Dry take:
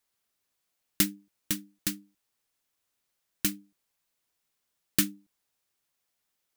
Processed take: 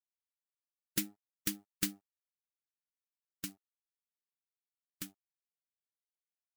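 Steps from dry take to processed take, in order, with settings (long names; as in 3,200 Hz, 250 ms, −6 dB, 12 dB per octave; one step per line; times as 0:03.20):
spectral magnitudes quantised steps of 15 dB
source passing by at 0:01.84, 9 m/s, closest 4.3 metres
dead-zone distortion −57 dBFS
level −2 dB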